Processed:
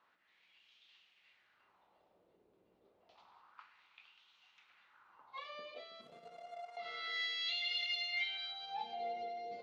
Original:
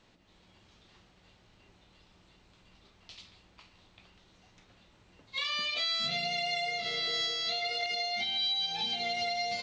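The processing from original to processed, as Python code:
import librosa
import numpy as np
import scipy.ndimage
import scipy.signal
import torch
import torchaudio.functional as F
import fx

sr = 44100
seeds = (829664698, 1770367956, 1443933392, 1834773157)

y = fx.band_shelf(x, sr, hz=1100.0, db=8.5, octaves=1.1, at=(3.15, 5.4))
y = fx.power_curve(y, sr, exponent=3.0, at=(6.01, 6.77))
y = fx.echo_split(y, sr, split_hz=1500.0, low_ms=324, high_ms=100, feedback_pct=52, wet_db=-13)
y = fx.wah_lfo(y, sr, hz=0.29, low_hz=420.0, high_hz=3000.0, q=2.7)
y = y * 10.0 ** (1.0 / 20.0)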